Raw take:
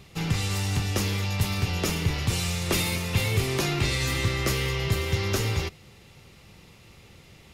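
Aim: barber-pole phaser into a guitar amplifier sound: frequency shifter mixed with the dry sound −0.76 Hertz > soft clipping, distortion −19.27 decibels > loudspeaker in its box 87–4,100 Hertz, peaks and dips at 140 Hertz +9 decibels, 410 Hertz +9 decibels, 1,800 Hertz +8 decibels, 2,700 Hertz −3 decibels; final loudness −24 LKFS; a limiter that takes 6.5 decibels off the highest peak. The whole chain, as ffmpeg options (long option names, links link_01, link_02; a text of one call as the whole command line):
ffmpeg -i in.wav -filter_complex "[0:a]alimiter=limit=-18dB:level=0:latency=1,asplit=2[link_01][link_02];[link_02]afreqshift=-0.76[link_03];[link_01][link_03]amix=inputs=2:normalize=1,asoftclip=threshold=-23.5dB,highpass=87,equalizer=frequency=140:width_type=q:width=4:gain=9,equalizer=frequency=410:width_type=q:width=4:gain=9,equalizer=frequency=1800:width_type=q:width=4:gain=8,equalizer=frequency=2700:width_type=q:width=4:gain=-3,lowpass=frequency=4100:width=0.5412,lowpass=frequency=4100:width=1.3066,volume=6.5dB" out.wav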